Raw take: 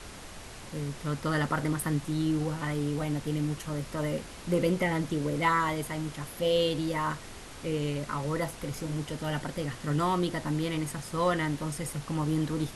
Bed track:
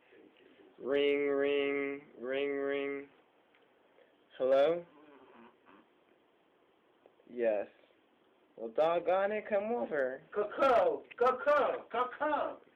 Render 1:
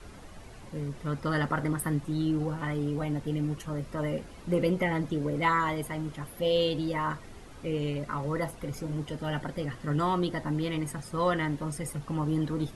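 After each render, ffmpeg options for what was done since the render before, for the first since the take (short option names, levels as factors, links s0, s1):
-af "afftdn=nr=10:nf=-45"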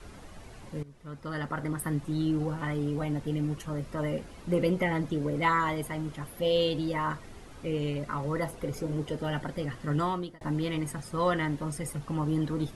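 -filter_complex "[0:a]asettb=1/sr,asplit=3[s0][s1][s2];[s0]atrim=end=8.504[s3];[s1]atrim=start=8.5:end=9.27,asetpts=PTS-STARTPTS,afade=t=in:d=0.004:c=qsin,afade=t=out:st=0.766:d=0.004:c=qsin,equalizer=f=440:t=o:w=0.77:g=6.5[s4];[s2]atrim=start=9.266[s5];[s3][s4]acrossfade=d=0.004:c1=hsin:c2=qsin[s6];[s6][s5]acrossfade=d=0.004:c1=qsin:c2=hsin,asplit=3[s7][s8][s9];[s7]atrim=end=0.83,asetpts=PTS-STARTPTS,afade=t=out:st=0.826:d=0.004:c=hsin:silence=0.133352[s10];[s8]atrim=start=0.83:end=10.41,asetpts=PTS-STARTPTS,afade=t=in:d=1.31:silence=0.133352,afade=t=out:st=9.16:d=0.42[s11];[s9]atrim=start=10.41,asetpts=PTS-STARTPTS,afade=t=in:d=0.004:c=hsin[s12];[s10][s11][s12]concat=n=3:v=0:a=1"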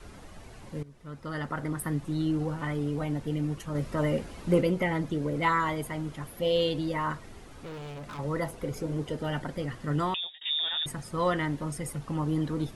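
-filter_complex "[0:a]asettb=1/sr,asplit=3[s0][s1][s2];[s0]atrim=end=7.554[s3];[s1]atrim=start=7.55:end=8.19,asetpts=PTS-STARTPTS,afade=t=in:d=0.004:c=qsin,afade=t=out:st=0.636:d=0.004:c=qsin,asoftclip=type=hard:threshold=0.0119[s4];[s2]atrim=start=8.186[s5];[s3][s4]acrossfade=d=0.004:c1=hsin:c2=qsin[s6];[s6][s5]acrossfade=d=0.004:c1=qsin:c2=hsin,asettb=1/sr,asplit=3[s7][s8][s9];[s7]atrim=end=10.144[s10];[s8]atrim=start=10.14:end=10.86,asetpts=PTS-STARTPTS,afade=t=in:d=0.004:c=qsin,afade=t=out:st=0.716:d=0.004:c=qsin,lowpass=f=3200:t=q:w=0.5098,lowpass=f=3200:t=q:w=0.6013,lowpass=f=3200:t=q:w=0.9,lowpass=f=3200:t=q:w=2.563,afreqshift=-3800[s11];[s9]atrim=start=10.856[s12];[s10][s11]acrossfade=d=0.004:c1=hsin:c2=qsin[s13];[s13][s12]acrossfade=d=0.004:c1=qsin:c2=hsin,asplit=3[s14][s15][s16];[s14]atrim=end=3.752[s17];[s15]atrim=start=3.748:end=4.612,asetpts=PTS-STARTPTS,volume=1.58[s18];[s16]atrim=start=4.608[s19];[s17][s18]acrossfade=d=0.004:c1=hsin:c2=hsin[s20];[s20][s19]acrossfade=d=0.004:c1=hsin:c2=hsin"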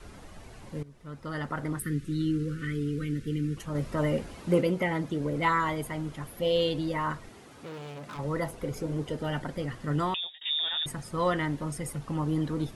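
-filter_complex "[0:a]asettb=1/sr,asplit=3[s0][s1][s2];[s0]atrim=end=1.794[s3];[s1]atrim=start=1.79:end=3.57,asetpts=PTS-STARTPTS,afade=t=in:d=0.004:c=qsin,afade=t=out:st=1.776:d=0.004:c=qsin,asuperstop=centerf=790:order=8:qfactor=0.9[s4];[s2]atrim=start=3.566[s5];[s3][s4]acrossfade=d=0.004:c1=hsin:c2=qsin[s6];[s6][s5]acrossfade=d=0.004:c1=qsin:c2=hsin,asettb=1/sr,asplit=3[s7][s8][s9];[s7]atrim=end=4.344[s10];[s8]atrim=start=4.34:end=5.2,asetpts=PTS-STARTPTS,afade=t=in:d=0.004:c=qsin,afade=t=out:st=0.856:d=0.004:c=qsin,highpass=f=100:p=1[s11];[s9]atrim=start=5.196[s12];[s10][s11]acrossfade=d=0.004:c1=hsin:c2=qsin[s13];[s13][s12]acrossfade=d=0.004:c1=qsin:c2=hsin,asettb=1/sr,asplit=3[s14][s15][s16];[s14]atrim=end=7.294[s17];[s15]atrim=start=7.29:end=8.16,asetpts=PTS-STARTPTS,afade=t=in:d=0.004:c=qsin,afade=t=out:st=0.866:d=0.004:c=qsin,highpass=130[s18];[s16]atrim=start=8.156[s19];[s17][s18]acrossfade=d=0.004:c1=hsin:c2=qsin[s20];[s20][s19]acrossfade=d=0.004:c1=qsin:c2=hsin"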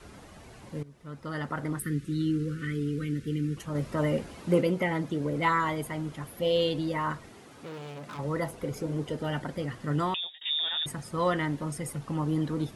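-af "highpass=f=120:p=1,lowshelf=f=190:g=3.5"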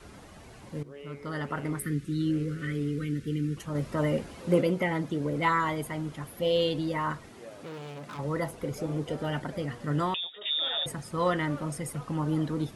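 -filter_complex "[1:a]volume=0.168[s0];[0:a][s0]amix=inputs=2:normalize=0"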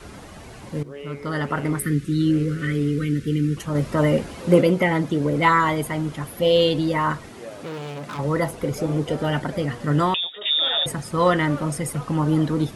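-af "volume=2.66"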